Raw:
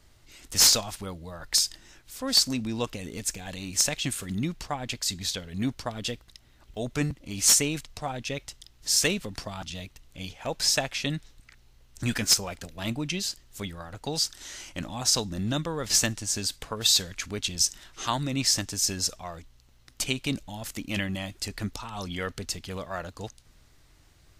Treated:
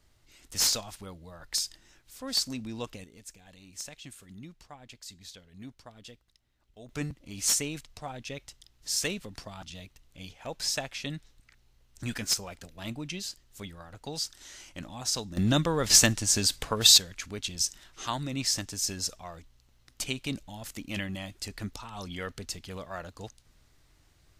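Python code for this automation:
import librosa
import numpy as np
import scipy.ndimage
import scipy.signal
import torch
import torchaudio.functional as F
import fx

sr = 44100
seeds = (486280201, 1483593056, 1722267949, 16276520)

y = fx.gain(x, sr, db=fx.steps((0.0, -7.0), (3.04, -16.5), (6.89, -6.5), (15.37, 4.0), (16.98, -4.5)))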